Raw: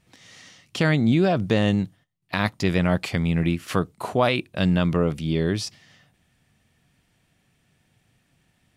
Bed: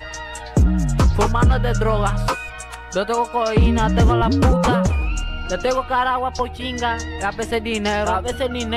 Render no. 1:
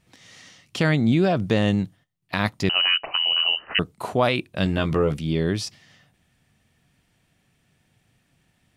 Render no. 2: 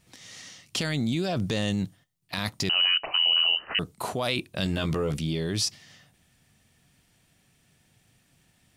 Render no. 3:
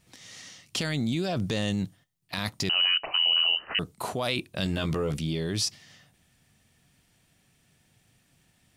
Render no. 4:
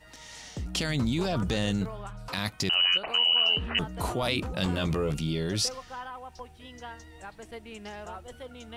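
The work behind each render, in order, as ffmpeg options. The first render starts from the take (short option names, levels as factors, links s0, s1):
-filter_complex "[0:a]asettb=1/sr,asplit=3[s0][s1][s2];[s0]atrim=end=2.694[s3];[s1]atrim=start=2.69:end=3.79,asetpts=PTS-STARTPTS,afade=t=in:d=0.004:c=qsin,afade=t=out:st=1.096:d=0.004:c=qsin,lowpass=f=2600:t=q:w=0.5098,lowpass=f=2600:t=q:w=0.6013,lowpass=f=2600:t=q:w=0.9,lowpass=f=2600:t=q:w=2.563,afreqshift=-3100[s4];[s2]atrim=start=3.786[s5];[s3][s4]acrossfade=d=0.004:c1=hsin:c2=qsin[s6];[s6][s5]acrossfade=d=0.004:c1=qsin:c2=hsin,asettb=1/sr,asplit=3[s7][s8][s9];[s7]atrim=end=4.644[s10];[s8]atrim=start=4.64:end=5.17,asetpts=PTS-STARTPTS,afade=t=in:d=0.004:c=qsin,afade=t=out:st=0.526:d=0.004:c=qsin,asplit=2[s11][s12];[s12]adelay=14,volume=0.562[s13];[s11][s13]amix=inputs=2:normalize=0,atrim=end_sample=23373[s14];[s9]atrim=start=5.166[s15];[s10][s14]acrossfade=d=0.004:c1=hsin:c2=qsin[s16];[s16][s15]acrossfade=d=0.004:c1=qsin:c2=hsin"
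-filter_complex "[0:a]acrossover=split=4100[s0][s1];[s0]alimiter=limit=0.0944:level=0:latency=1:release=13[s2];[s1]acontrast=62[s3];[s2][s3]amix=inputs=2:normalize=0"
-af "volume=0.891"
-filter_complex "[1:a]volume=0.0891[s0];[0:a][s0]amix=inputs=2:normalize=0"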